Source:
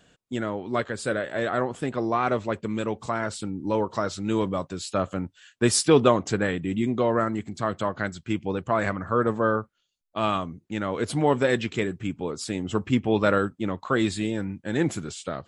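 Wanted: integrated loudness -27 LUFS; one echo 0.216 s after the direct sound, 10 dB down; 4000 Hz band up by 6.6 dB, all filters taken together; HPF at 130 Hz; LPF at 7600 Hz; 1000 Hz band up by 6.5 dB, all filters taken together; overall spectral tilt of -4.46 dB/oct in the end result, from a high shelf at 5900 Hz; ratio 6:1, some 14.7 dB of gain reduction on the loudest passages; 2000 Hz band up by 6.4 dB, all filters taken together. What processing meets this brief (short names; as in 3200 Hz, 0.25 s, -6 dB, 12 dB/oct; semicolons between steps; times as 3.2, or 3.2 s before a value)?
HPF 130 Hz; LPF 7600 Hz; bell 1000 Hz +6.5 dB; bell 2000 Hz +4.5 dB; bell 4000 Hz +8.5 dB; high shelf 5900 Hz -4 dB; compressor 6:1, threshold -26 dBFS; echo 0.216 s -10 dB; gain +4 dB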